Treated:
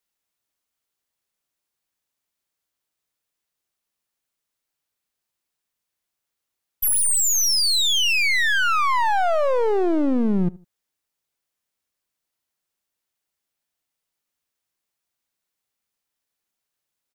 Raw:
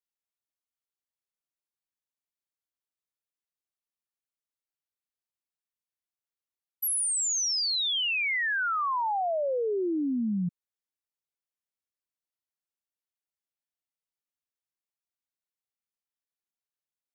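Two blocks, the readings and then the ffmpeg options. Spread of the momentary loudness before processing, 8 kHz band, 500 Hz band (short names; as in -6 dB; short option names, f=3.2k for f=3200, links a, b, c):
5 LU, +8.0 dB, +8.0 dB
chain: -filter_complex "[0:a]acontrast=36,aeval=exprs='clip(val(0),-1,0.0224)':c=same,asplit=2[a][b];[b]adelay=77,lowpass=f=1.5k:p=1,volume=-21dB,asplit=2[c][d];[d]adelay=77,lowpass=f=1.5k:p=1,volume=0.33[e];[a][c][e]amix=inputs=3:normalize=0,volume=6dB"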